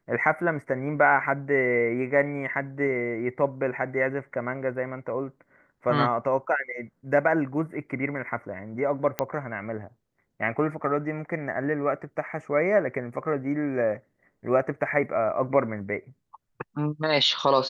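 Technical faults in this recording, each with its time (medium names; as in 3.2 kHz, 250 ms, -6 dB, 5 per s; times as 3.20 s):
9.19 s: pop -9 dBFS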